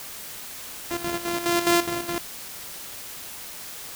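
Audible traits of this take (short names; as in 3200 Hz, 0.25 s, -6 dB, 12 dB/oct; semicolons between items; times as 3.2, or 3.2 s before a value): a buzz of ramps at a fixed pitch in blocks of 128 samples; chopped level 4.8 Hz, depth 65%, duty 65%; a quantiser's noise floor 8-bit, dither triangular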